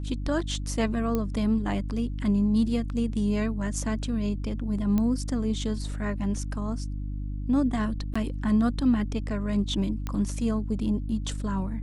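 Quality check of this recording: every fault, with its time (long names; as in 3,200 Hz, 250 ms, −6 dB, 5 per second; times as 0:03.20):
mains hum 50 Hz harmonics 6 −32 dBFS
0:01.15: click −15 dBFS
0:04.98: click −15 dBFS
0:08.14–0:08.15: drop-out 15 ms
0:10.07: click −18 dBFS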